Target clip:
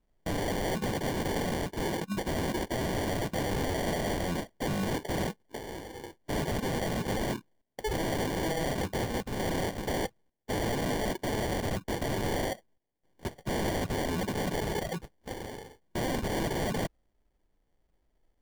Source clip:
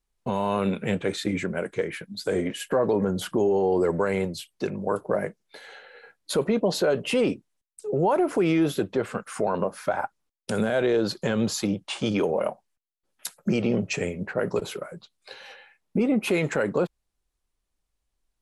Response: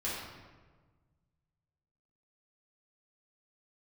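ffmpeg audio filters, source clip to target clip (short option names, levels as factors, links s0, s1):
-af "acrusher=samples=34:mix=1:aa=0.000001,aeval=exprs='0.0266*(abs(mod(val(0)/0.0266+3,4)-2)-1)':c=same,volume=2"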